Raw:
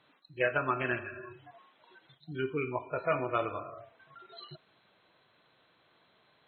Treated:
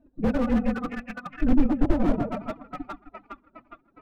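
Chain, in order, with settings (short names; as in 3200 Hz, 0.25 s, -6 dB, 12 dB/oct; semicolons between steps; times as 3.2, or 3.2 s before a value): Wiener smoothing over 41 samples; on a send: split-band echo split 990 Hz, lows 0.213 s, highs 0.665 s, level -4 dB; on the sum: granular stretch 0.62×, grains 46 ms; transient shaper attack +9 dB, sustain -9 dB; low shelf 130 Hz +6 dB; formant-preserving pitch shift +12 st; tilt -4.5 dB/oct; notches 50/100/150/200/250 Hz; slew limiter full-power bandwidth 18 Hz; gain +5.5 dB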